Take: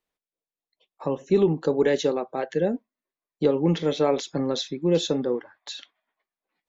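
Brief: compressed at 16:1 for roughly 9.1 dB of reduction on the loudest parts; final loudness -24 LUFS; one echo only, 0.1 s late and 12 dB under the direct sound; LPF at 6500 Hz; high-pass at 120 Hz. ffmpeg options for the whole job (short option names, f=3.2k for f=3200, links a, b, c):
-af "highpass=120,lowpass=6.5k,acompressor=threshold=-24dB:ratio=16,aecho=1:1:100:0.251,volume=7dB"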